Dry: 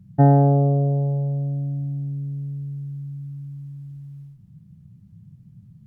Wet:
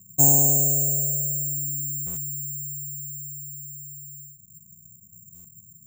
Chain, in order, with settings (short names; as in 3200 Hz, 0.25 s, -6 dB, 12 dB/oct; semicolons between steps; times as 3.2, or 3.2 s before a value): air absorption 140 m; careless resampling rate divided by 6×, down none, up zero stuff; stuck buffer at 2.06/5.34, samples 512, times 8; gain -10.5 dB